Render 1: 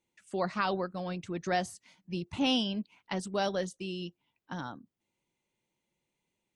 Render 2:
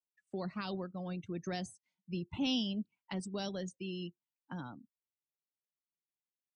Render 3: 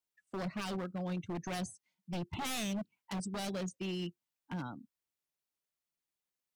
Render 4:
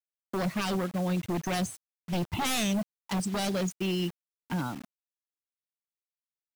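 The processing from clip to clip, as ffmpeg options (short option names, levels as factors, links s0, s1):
-filter_complex "[0:a]afftdn=nr=25:nf=-45,acrossover=split=320|3000[s0][s1][s2];[s1]acompressor=threshold=0.00501:ratio=2.5[s3];[s0][s3][s2]amix=inputs=3:normalize=0,volume=0.794"
-af "aeval=exprs='0.0168*(abs(mod(val(0)/0.0168+3,4)-2)-1)':c=same,volume=1.5"
-af "acrusher=bits=8:mix=0:aa=0.000001,volume=2.66"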